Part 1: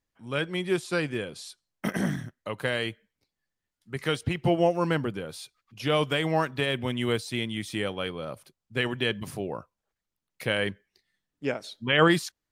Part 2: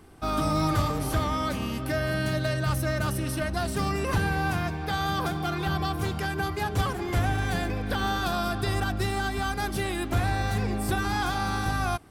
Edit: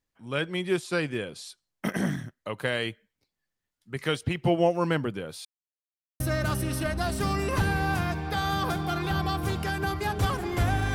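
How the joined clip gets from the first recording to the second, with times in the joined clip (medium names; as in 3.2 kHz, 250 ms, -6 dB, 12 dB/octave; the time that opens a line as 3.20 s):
part 1
5.45–6.20 s: mute
6.20 s: go over to part 2 from 2.76 s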